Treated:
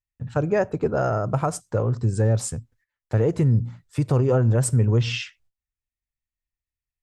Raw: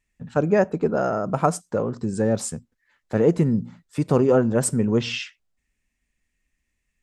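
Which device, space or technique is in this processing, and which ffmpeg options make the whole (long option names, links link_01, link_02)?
car stereo with a boomy subwoofer: -af "lowshelf=frequency=150:width_type=q:width=3:gain=6.5,alimiter=limit=-12dB:level=0:latency=1:release=112,agate=range=-22dB:threshold=-59dB:ratio=16:detection=peak"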